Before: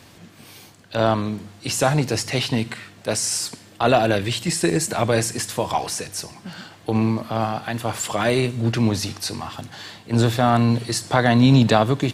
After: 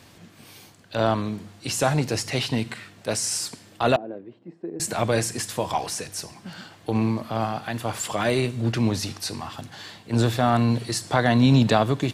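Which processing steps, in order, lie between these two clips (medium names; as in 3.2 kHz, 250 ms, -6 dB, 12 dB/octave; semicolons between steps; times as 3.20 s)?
3.96–4.80 s: ladder band-pass 370 Hz, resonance 25%; trim -3 dB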